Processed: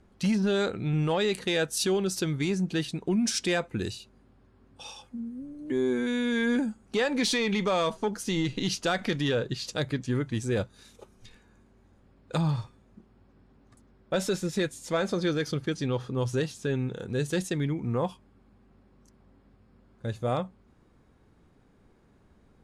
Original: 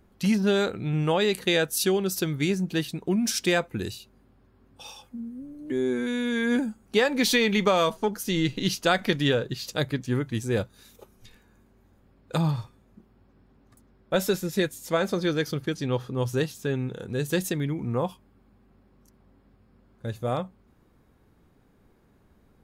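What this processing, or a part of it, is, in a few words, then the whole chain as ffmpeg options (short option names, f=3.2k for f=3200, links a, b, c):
soft clipper into limiter: -filter_complex "[0:a]lowpass=f=9.7k:w=0.5412,lowpass=f=9.7k:w=1.3066,asoftclip=type=tanh:threshold=-13.5dB,alimiter=limit=-18.5dB:level=0:latency=1:release=61,asplit=3[a][b][c];[a]afade=t=out:st=17.31:d=0.02[d];[b]agate=range=-33dB:threshold=-28dB:ratio=3:detection=peak,afade=t=in:st=17.31:d=0.02,afade=t=out:st=17.83:d=0.02[e];[c]afade=t=in:st=17.83:d=0.02[f];[d][e][f]amix=inputs=3:normalize=0"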